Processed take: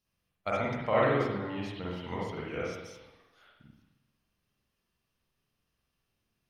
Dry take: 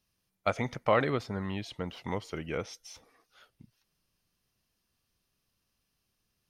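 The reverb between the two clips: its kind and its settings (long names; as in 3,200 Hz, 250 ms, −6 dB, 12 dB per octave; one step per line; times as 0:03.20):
spring reverb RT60 1 s, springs 45/59 ms, chirp 70 ms, DRR −6 dB
level −6.5 dB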